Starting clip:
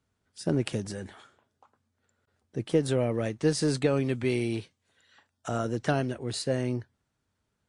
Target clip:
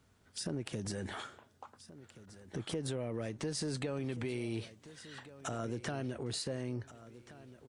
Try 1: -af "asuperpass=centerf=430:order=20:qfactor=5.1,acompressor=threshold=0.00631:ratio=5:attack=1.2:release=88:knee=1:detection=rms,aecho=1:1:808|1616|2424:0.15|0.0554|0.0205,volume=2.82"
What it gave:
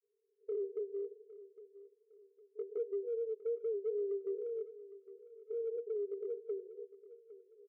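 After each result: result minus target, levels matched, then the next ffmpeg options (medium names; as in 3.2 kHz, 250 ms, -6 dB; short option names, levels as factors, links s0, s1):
echo 619 ms early; 500 Hz band +5.0 dB
-af "asuperpass=centerf=430:order=20:qfactor=5.1,acompressor=threshold=0.00631:ratio=5:attack=1.2:release=88:knee=1:detection=rms,aecho=1:1:1427|2854|4281:0.15|0.0554|0.0205,volume=2.82"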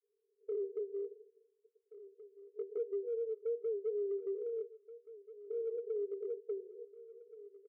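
500 Hz band +5.0 dB
-af "acompressor=threshold=0.00631:ratio=5:attack=1.2:release=88:knee=1:detection=rms,aecho=1:1:1427|2854|4281:0.15|0.0554|0.0205,volume=2.82"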